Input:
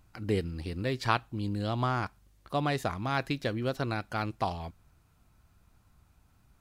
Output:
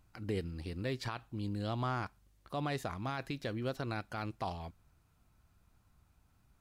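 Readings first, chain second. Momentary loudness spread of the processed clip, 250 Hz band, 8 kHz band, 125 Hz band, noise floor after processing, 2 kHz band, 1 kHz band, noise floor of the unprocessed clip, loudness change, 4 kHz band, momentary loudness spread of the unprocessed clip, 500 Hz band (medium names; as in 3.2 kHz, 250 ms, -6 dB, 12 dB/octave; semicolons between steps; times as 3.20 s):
6 LU, -6.0 dB, -5.5 dB, -6.0 dB, -71 dBFS, -8.0 dB, -8.0 dB, -66 dBFS, -6.5 dB, -7.0 dB, 5 LU, -6.5 dB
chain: peak limiter -21 dBFS, peak gain reduction 12 dB; trim -5 dB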